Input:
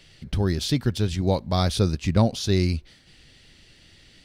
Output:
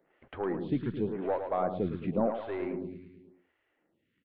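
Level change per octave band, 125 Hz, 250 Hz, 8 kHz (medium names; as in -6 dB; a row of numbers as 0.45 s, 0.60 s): -17.5 dB, -8.0 dB, under -40 dB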